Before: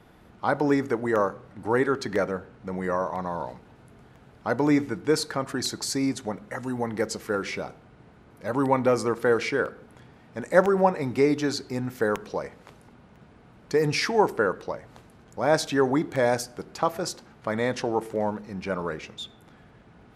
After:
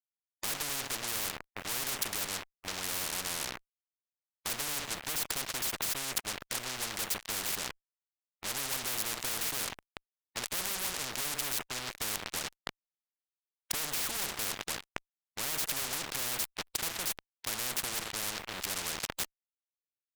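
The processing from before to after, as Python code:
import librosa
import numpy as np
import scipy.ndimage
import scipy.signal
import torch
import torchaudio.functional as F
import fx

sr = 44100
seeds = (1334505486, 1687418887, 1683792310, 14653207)

y = fx.wiener(x, sr, points=9)
y = fx.quant_dither(y, sr, seeds[0], bits=12, dither='none')
y = fx.fuzz(y, sr, gain_db=35.0, gate_db=-39.0)
y = fx.spectral_comp(y, sr, ratio=10.0)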